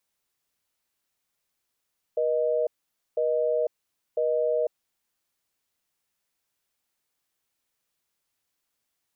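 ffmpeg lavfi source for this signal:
-f lavfi -i "aevalsrc='0.0596*(sin(2*PI*480*t)+sin(2*PI*620*t))*clip(min(mod(t,1),0.5-mod(t,1))/0.005,0,1)':d=2.98:s=44100"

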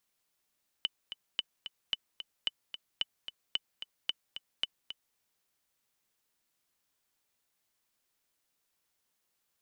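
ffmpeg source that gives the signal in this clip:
-f lavfi -i "aevalsrc='pow(10,(-16.5-10.5*gte(mod(t,2*60/222),60/222))/20)*sin(2*PI*3000*mod(t,60/222))*exp(-6.91*mod(t,60/222)/0.03)':d=4.32:s=44100"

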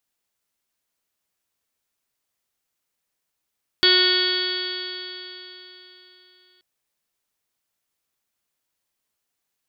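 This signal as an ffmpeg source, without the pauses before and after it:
-f lavfi -i "aevalsrc='0.0891*pow(10,-3*t/3.66)*sin(2*PI*365.08*t)+0.0119*pow(10,-3*t/3.66)*sin(2*PI*730.63*t)+0.0211*pow(10,-3*t/3.66)*sin(2*PI*1097.12*t)+0.0668*pow(10,-3*t/3.66)*sin(2*PI*1465.01*t)+0.0596*pow(10,-3*t/3.66)*sin(2*PI*1834.78*t)+0.0398*pow(10,-3*t/3.66)*sin(2*PI*2206.89*t)+0.02*pow(10,-3*t/3.66)*sin(2*PI*2581.78*t)+0.0447*pow(10,-3*t/3.66)*sin(2*PI*2959.91*t)+0.158*pow(10,-3*t/3.66)*sin(2*PI*3341.72*t)+0.0501*pow(10,-3*t/3.66)*sin(2*PI*3727.65*t)+0.0282*pow(10,-3*t/3.66)*sin(2*PI*4118.13*t)+0.141*pow(10,-3*t/3.66)*sin(2*PI*4513.57*t)+0.0168*pow(10,-3*t/3.66)*sin(2*PI*4914.39*t)':d=2.78:s=44100"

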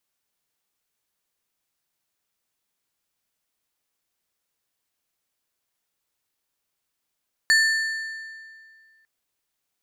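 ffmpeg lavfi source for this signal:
-f lavfi -i "aevalsrc='0.2*pow(10,-3*t/2.07)*sin(2*PI*1780*t)+0.0944*pow(10,-3*t/1.572)*sin(2*PI*4450*t)+0.0447*pow(10,-3*t/1.366)*sin(2*PI*7120*t)+0.0211*pow(10,-3*t/1.277)*sin(2*PI*8900*t)+0.01*pow(10,-3*t/1.181)*sin(2*PI*11570*t)+0.00473*pow(10,-3*t/1.089)*sin(2*PI*15130*t)':d=1.55:s=44100"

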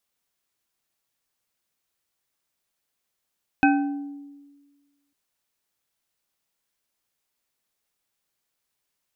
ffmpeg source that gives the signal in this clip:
-f lavfi -i "aevalsrc='0.178*pow(10,-3*t/1.48)*sin(2*PI*284*t)+0.141*pow(10,-3*t/0.728)*sin(2*PI*783*t)+0.112*pow(10,-3*t/0.454)*sin(2*PI*1534.7*t)+0.0891*pow(10,-3*t/0.32)*sin(2*PI*2537*t)':d=1.5:s=44100"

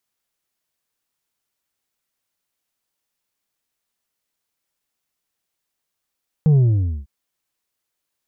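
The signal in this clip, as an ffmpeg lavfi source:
-f lavfi -i "aevalsrc='0.282*clip((0.6-t)/0.5,0,1)*tanh(1.68*sin(2*PI*160*0.6/log(65/160)*(exp(log(65/160)*t/0.6)-1)))/tanh(1.68)':d=0.6:s=44100"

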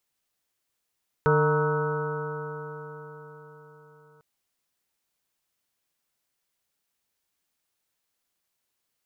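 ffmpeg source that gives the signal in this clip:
-f lavfi -i "aevalsrc='0.0794*pow(10,-3*t/4.69)*sin(2*PI*149.21*t)+0.0158*pow(10,-3*t/4.69)*sin(2*PI*299.66*t)+0.1*pow(10,-3*t/4.69)*sin(2*PI*452.6*t)+0.0188*pow(10,-3*t/4.69)*sin(2*PI*609.2*t)+0.00891*pow(10,-3*t/4.69)*sin(2*PI*770.63*t)+0.0447*pow(10,-3*t/4.69)*sin(2*PI*937.98*t)+0.02*pow(10,-3*t/4.69)*sin(2*PI*1112.25*t)+0.0447*pow(10,-3*t/4.69)*sin(2*PI*1294.4*t)+0.0376*pow(10,-3*t/4.69)*sin(2*PI*1485.31*t)':d=2.95:s=44100"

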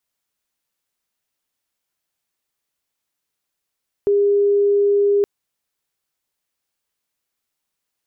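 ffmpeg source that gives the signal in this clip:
-f lavfi -i "sine=f=405:d=1.17:r=44100,volume=5.56dB"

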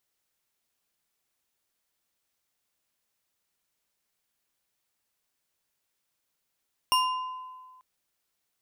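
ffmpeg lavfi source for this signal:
-f lavfi -i "aevalsrc='0.0944*pow(10,-3*t/1.66)*sin(2*PI*1020*t)+0.0668*pow(10,-3*t/0.816)*sin(2*PI*2812.1*t)+0.0473*pow(10,-3*t/0.51)*sin(2*PI*5512.1*t)+0.0335*pow(10,-3*t/0.358)*sin(2*PI*9111.7*t)+0.0237*pow(10,-3*t/0.271)*sin(2*PI*13606.8*t)':d=0.89:s=44100"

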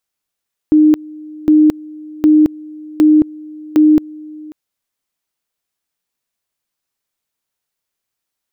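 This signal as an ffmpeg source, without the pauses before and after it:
-f lavfi -i "aevalsrc='pow(10,(-5-23.5*gte(mod(t,0.76),0.22))/20)*sin(2*PI*306*t)':d=3.8:s=44100"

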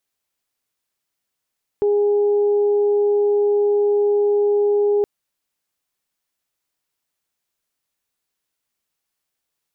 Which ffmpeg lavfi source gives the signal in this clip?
-f lavfi -i "aevalsrc='0.2*sin(2*PI*411*t)+0.0224*sin(2*PI*822*t)':d=3.22:s=44100"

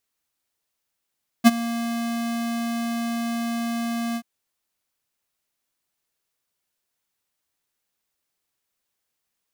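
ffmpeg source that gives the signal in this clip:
-f lavfi -i "aevalsrc='0.355*(2*lt(mod(233*t,1),0.5)-1)':d=2.782:s=44100,afade=t=in:d=0.03,afade=t=out:st=0.03:d=0.03:silence=0.133,afade=t=out:st=2.72:d=0.062"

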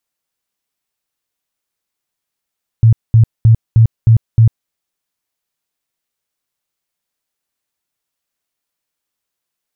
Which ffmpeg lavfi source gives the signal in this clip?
-f lavfi -i "aevalsrc='0.668*sin(2*PI*113*mod(t,0.31))*lt(mod(t,0.31),11/113)':d=1.86:s=44100"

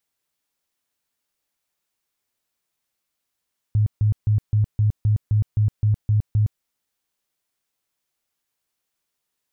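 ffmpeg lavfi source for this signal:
-f lavfi -i "aevalsrc='0.188*sin(2*PI*106*mod(t,0.26))*lt(mod(t,0.26),12/106)':d=2.86:s=44100"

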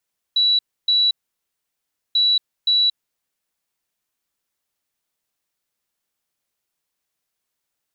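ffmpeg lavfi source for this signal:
-f lavfi -i "aevalsrc='0.211*sin(2*PI*3930*t)*clip(min(mod(mod(t,1.79),0.52),0.23-mod(mod(t,1.79),0.52))/0.005,0,1)*lt(mod(t,1.79),1.04)':d=3.58:s=44100"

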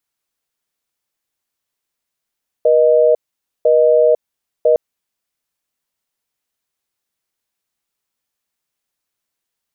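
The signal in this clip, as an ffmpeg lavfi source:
-f lavfi -i "aevalsrc='0.282*(sin(2*PI*480*t)+sin(2*PI*620*t))*clip(min(mod(t,1),0.5-mod(t,1))/0.005,0,1)':d=2.11:s=44100"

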